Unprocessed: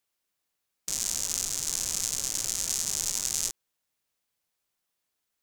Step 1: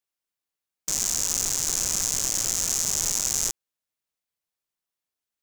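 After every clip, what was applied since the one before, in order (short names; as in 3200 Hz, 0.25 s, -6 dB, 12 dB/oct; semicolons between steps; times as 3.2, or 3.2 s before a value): sample leveller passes 3; gain -1.5 dB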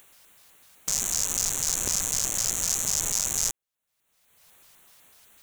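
upward compressor, threshold -30 dBFS; LFO notch square 4 Hz 320–5000 Hz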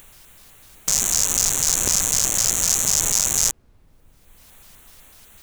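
added noise brown -60 dBFS; gain +7 dB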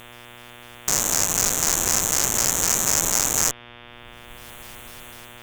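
AGC gain up to 9 dB; buzz 120 Hz, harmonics 30, -41 dBFS -1 dB/oct; added harmonics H 2 -7 dB, 4 -9 dB, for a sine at -0.5 dBFS; gain -3.5 dB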